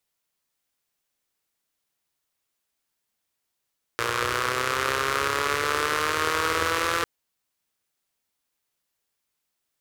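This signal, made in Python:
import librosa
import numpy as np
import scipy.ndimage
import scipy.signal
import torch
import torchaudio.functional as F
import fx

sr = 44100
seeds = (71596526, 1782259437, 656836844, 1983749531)

y = fx.engine_four_rev(sr, seeds[0], length_s=3.05, rpm=3500, resonances_hz=(93.0, 450.0, 1200.0), end_rpm=5100)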